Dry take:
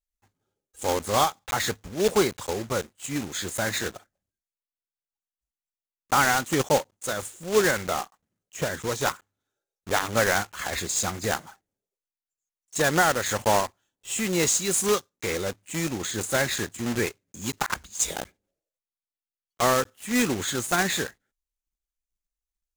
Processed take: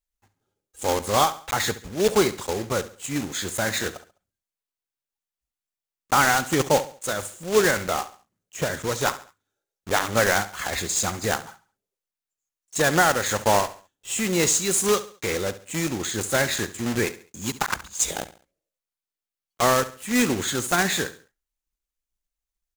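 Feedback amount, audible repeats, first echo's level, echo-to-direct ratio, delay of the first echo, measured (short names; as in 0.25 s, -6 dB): 37%, 3, -15.5 dB, -15.0 dB, 69 ms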